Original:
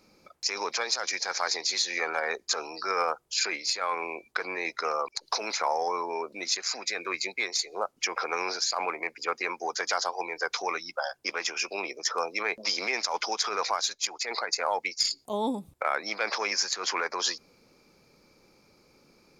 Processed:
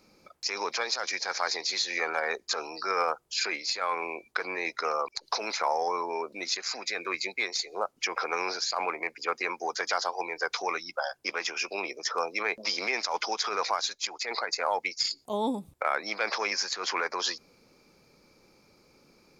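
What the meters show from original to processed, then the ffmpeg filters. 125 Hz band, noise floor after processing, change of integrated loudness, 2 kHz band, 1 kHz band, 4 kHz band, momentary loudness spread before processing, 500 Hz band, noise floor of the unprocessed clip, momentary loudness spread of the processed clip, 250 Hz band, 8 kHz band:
n/a, -63 dBFS, -1.0 dB, 0.0 dB, 0.0 dB, -1.5 dB, 5 LU, 0.0 dB, -63 dBFS, 4 LU, 0.0 dB, -4.5 dB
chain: -filter_complex "[0:a]acrossover=split=6300[a][b];[b]acompressor=threshold=-49dB:ratio=4:attack=1:release=60[c];[a][c]amix=inputs=2:normalize=0"

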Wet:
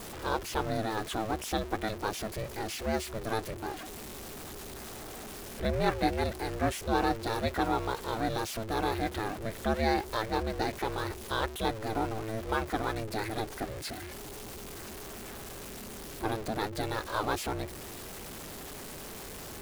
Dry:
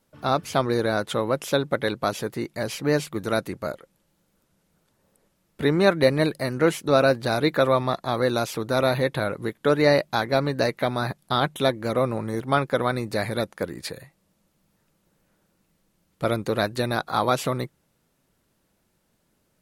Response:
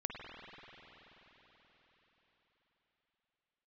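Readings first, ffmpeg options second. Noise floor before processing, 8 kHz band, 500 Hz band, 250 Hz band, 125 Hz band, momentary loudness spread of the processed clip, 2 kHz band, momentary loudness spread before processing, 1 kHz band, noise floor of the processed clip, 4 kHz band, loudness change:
-70 dBFS, -2.0 dB, -11.0 dB, -8.0 dB, -8.5 dB, 12 LU, -8.0 dB, 10 LU, -5.0 dB, -43 dBFS, -7.5 dB, -10.0 dB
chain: -af "aeval=exprs='val(0)+0.5*0.0473*sgn(val(0))':c=same,aeval=exprs='val(0)*sin(2*PI*220*n/s)':c=same,volume=-7.5dB"

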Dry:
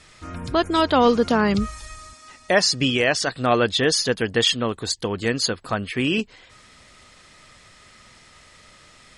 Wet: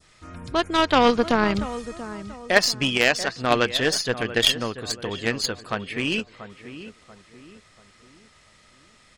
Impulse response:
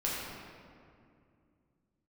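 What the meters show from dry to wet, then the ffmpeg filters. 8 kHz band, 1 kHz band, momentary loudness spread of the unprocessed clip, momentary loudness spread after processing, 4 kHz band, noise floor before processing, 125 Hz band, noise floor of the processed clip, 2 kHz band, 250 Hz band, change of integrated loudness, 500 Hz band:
-3.0 dB, -0.5 dB, 10 LU, 19 LU, -0.5 dB, -51 dBFS, -4.0 dB, -56 dBFS, +1.0 dB, -3.0 dB, -1.5 dB, -2.5 dB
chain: -filter_complex "[0:a]asplit=2[a][b];[b]adelay=686,lowpass=f=2.3k:p=1,volume=-10.5dB,asplit=2[c][d];[d]adelay=686,lowpass=f=2.3k:p=1,volume=0.41,asplit=2[e][f];[f]adelay=686,lowpass=f=2.3k:p=1,volume=0.41,asplit=2[g][h];[h]adelay=686,lowpass=f=2.3k:p=1,volume=0.41[i];[a][c][e][g][i]amix=inputs=5:normalize=0,adynamicequalizer=threshold=0.0178:dfrequency=2300:dqfactor=1.1:tfrequency=2300:tqfactor=1.1:attack=5:release=100:ratio=0.375:range=2:mode=boostabove:tftype=bell,aeval=exprs='0.562*(cos(1*acos(clip(val(0)/0.562,-1,1)))-cos(1*PI/2))+0.112*(cos(3*acos(clip(val(0)/0.562,-1,1)))-cos(3*PI/2))+0.0141*(cos(4*acos(clip(val(0)/0.562,-1,1)))-cos(4*PI/2))':c=same,volume=2dB"

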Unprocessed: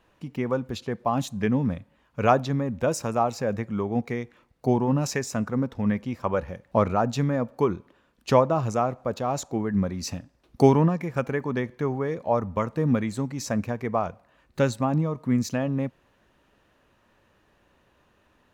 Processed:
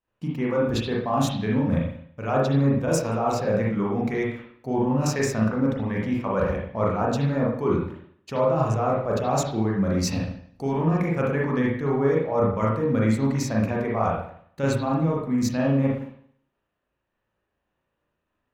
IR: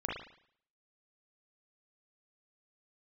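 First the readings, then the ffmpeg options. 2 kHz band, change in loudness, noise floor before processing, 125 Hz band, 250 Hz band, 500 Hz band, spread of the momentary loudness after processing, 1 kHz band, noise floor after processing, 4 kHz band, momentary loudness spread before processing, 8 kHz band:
+2.5 dB, +1.5 dB, -65 dBFS, +2.5 dB, +2.5 dB, +1.5 dB, 6 LU, -0.5 dB, -79 dBFS, +2.5 dB, 10 LU, +1.5 dB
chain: -filter_complex "[0:a]agate=range=-33dB:threshold=-47dB:ratio=3:detection=peak,areverse,acompressor=threshold=-30dB:ratio=16,areverse[a];[1:a]atrim=start_sample=2205[b];[a][b]afir=irnorm=-1:irlink=0,volume=7dB"

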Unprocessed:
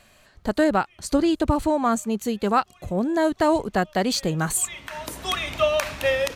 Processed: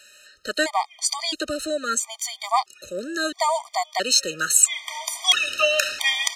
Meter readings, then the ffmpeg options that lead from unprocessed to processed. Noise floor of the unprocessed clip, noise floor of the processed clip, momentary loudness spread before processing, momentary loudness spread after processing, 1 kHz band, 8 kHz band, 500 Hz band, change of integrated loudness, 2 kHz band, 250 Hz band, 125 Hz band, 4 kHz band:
-56 dBFS, -55 dBFS, 7 LU, 11 LU, -0.5 dB, +9.0 dB, -5.0 dB, +1.5 dB, +4.5 dB, -12.0 dB, -20.0 dB, +9.0 dB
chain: -filter_complex "[0:a]acrossover=split=350 7400:gain=0.1 1 0.112[a][b][c];[a][b][c]amix=inputs=3:normalize=0,crystalizer=i=10:c=0,afftfilt=real='re*gt(sin(2*PI*0.75*pts/sr)*(1-2*mod(floor(b*sr/1024/620),2)),0)':imag='im*gt(sin(2*PI*0.75*pts/sr)*(1-2*mod(floor(b*sr/1024/620),2)),0)':win_size=1024:overlap=0.75,volume=-2dB"

